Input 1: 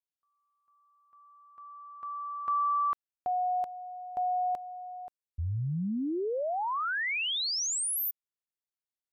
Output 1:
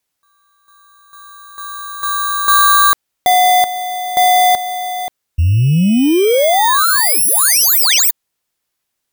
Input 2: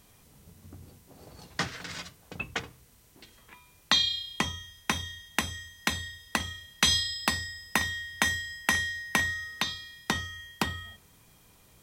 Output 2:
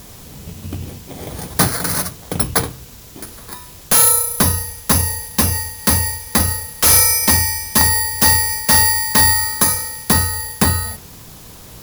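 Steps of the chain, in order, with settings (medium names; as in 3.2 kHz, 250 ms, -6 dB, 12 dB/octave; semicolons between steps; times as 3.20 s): bit-reversed sample order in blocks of 16 samples; sine folder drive 17 dB, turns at -6 dBFS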